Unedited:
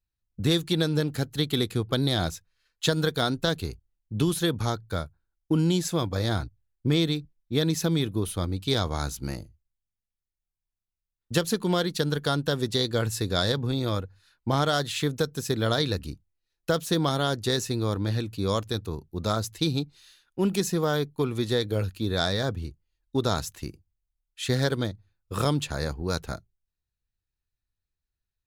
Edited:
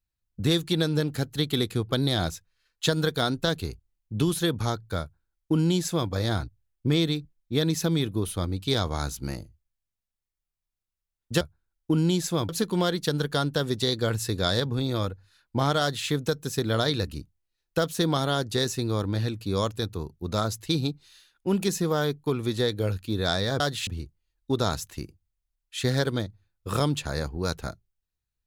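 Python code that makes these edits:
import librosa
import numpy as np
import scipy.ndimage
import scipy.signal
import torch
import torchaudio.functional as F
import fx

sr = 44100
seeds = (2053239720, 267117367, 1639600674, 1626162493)

y = fx.edit(x, sr, fx.duplicate(start_s=5.02, length_s=1.08, to_s=11.41),
    fx.duplicate(start_s=14.73, length_s=0.27, to_s=22.52), tone=tone)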